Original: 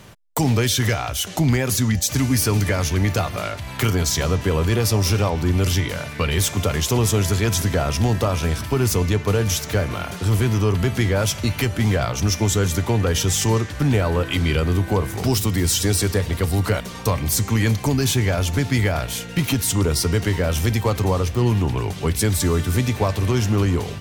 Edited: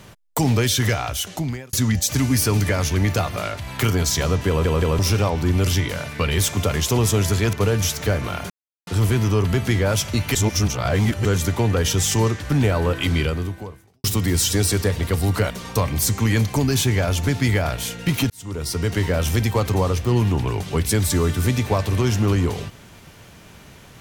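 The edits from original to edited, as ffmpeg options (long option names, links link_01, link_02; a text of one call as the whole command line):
ffmpeg -i in.wav -filter_complex "[0:a]asplit=11[link_01][link_02][link_03][link_04][link_05][link_06][link_07][link_08][link_09][link_10][link_11];[link_01]atrim=end=1.73,asetpts=PTS-STARTPTS,afade=type=out:start_time=1.1:duration=0.63[link_12];[link_02]atrim=start=1.73:end=4.652,asetpts=PTS-STARTPTS,afade=type=in:duration=0.004:curve=hsin[link_13];[link_03]atrim=start=4.478:end=4.652[link_14];[link_04]atrim=start=4.478:end=4.652[link_15];[link_05]atrim=start=4.988:end=7.532[link_16];[link_06]atrim=start=9.198:end=10.17,asetpts=PTS-STARTPTS,afade=type=out:start_time=0.968:duration=0.004:curve=hsin,apad=pad_dur=0.37[link_17];[link_07]atrim=start=10.17:end=11.652,asetpts=PTS-STARTPTS,afade=type=in:duration=0.004:curve=hsin[link_18];[link_08]atrim=start=11.648:end=12.552,asetpts=PTS-STARTPTS,areverse[link_19];[link_09]atrim=start=12.548:end=15.34,asetpts=PTS-STARTPTS,afade=type=out:start_time=1.922:duration=0.87:curve=qua[link_20];[link_10]atrim=start=15.34:end=19.6,asetpts=PTS-STARTPTS,afade=type=in:duration=0.004:curve=hsin,afade=type=out:start_time=4.256:duration=0.004:curve=hsin[link_21];[link_11]atrim=start=19.6,asetpts=PTS-STARTPTS,afade=type=in:duration=0.73[link_22];[link_12][link_13]concat=n=2:v=0:a=1[link_23];[link_23][link_14]acrossfade=duration=0.004:curve1=hsin:curve2=hsin[link_24];[link_24][link_15]acrossfade=duration=0.004:curve1=hsin:curve2=hsin[link_25];[link_25][link_16]acrossfade=duration=0.004:curve1=hsin:curve2=hsin[link_26];[link_17][link_18]concat=n=2:v=0:a=1[link_27];[link_26][link_27]acrossfade=duration=0.004:curve1=hsin:curve2=hsin[link_28];[link_28][link_19]acrossfade=duration=0.004:curve1=hsin:curve2=hsin[link_29];[link_20][link_21][link_22]concat=n=3:v=0:a=1[link_30];[link_29][link_30]acrossfade=duration=0.004:curve1=hsin:curve2=hsin" out.wav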